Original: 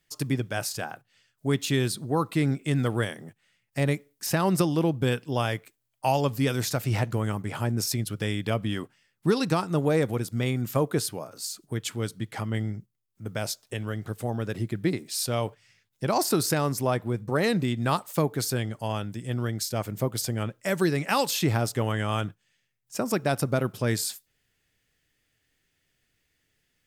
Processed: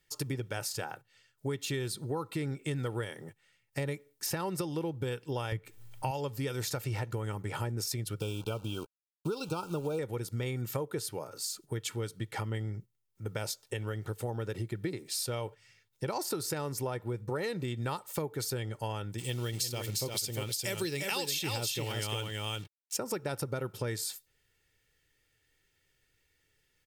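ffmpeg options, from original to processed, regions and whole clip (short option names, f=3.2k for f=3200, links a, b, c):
-filter_complex "[0:a]asettb=1/sr,asplit=3[a][b][c];[a]atrim=end=5.524[d];[b]atrim=start=5.52:end=6.11,asetpts=PTS-STARTPTS,afade=t=in:d=0.004:c=qsin,afade=t=out:st=0.586:d=0.004:c=qsin,bass=f=250:g=11,treble=f=4k:g=-4,acompressor=mode=upward:threshold=-30dB:ratio=2.5:attack=3.2:release=140:knee=2.83:detection=peak[e];[c]atrim=start=6.106[f];[d][e]acrossfade=d=0.004:c1=hsin:c2=qsin[g];[g][f]acrossfade=d=0.004:c1=qsin:c2=hsin,asettb=1/sr,asplit=3[h][i][j];[h]atrim=end=8.204[k];[i]atrim=start=8.2:end=9.99,asetpts=PTS-STARTPTS,afade=t=in:d=0.004:c=qsin,afade=t=out:st=1.786:d=0.004:c=qsin,aeval=exprs='sgn(val(0))*max(abs(val(0))-0.00211,0)':c=same,acrusher=bits=8:dc=4:mix=0:aa=0.000001,asuperstop=centerf=1900:order=20:qfactor=2.4[l];[j]atrim=start=9.986[m];[k][l]acrossfade=d=0.004:c1=hsin:c2=qsin[n];[n][m]acrossfade=d=0.004:c1=qsin:c2=hsin,asettb=1/sr,asplit=3[o][p][q];[o]atrim=end=19.184[r];[p]atrim=start=19.18:end=22.97,asetpts=PTS-STARTPTS,afade=t=in:d=0.004:c=qsin,afade=t=out:st=3.786:d=0.004:c=qsin,acrusher=bits=7:mix=0:aa=0.5,highshelf=f=2.1k:t=q:w=1.5:g=8.5,aecho=1:1:351:0.596,atrim=end_sample=167139[s];[q]atrim=start=22.966[t];[r][s]acrossfade=d=0.004:c1=hsin:c2=qsin[u];[u][t]acrossfade=d=0.004:c1=qsin:c2=hsin,aecho=1:1:2.2:0.48,acompressor=threshold=-30dB:ratio=6,volume=-1.5dB"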